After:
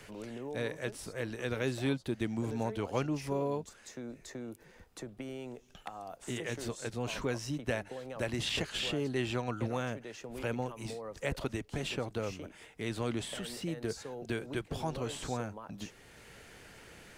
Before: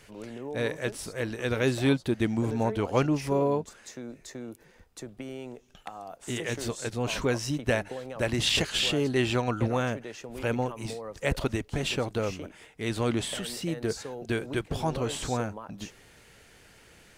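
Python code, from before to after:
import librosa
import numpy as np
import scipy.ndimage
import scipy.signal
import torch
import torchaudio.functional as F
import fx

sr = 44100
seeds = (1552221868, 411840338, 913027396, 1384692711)

y = fx.band_squash(x, sr, depth_pct=40)
y = F.gain(torch.from_numpy(y), -7.0).numpy()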